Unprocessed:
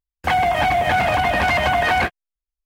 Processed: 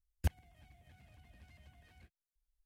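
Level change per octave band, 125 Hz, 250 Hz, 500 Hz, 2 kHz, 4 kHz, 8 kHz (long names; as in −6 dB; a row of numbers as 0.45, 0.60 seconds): −15.0, −25.0, −38.5, −40.0, −33.5, −21.5 decibels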